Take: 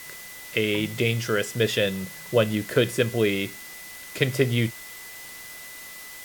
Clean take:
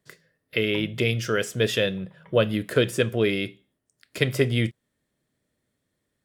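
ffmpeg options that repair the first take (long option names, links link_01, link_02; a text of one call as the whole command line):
ffmpeg -i in.wav -af "bandreject=frequency=2000:width=30,afwtdn=0.0079" out.wav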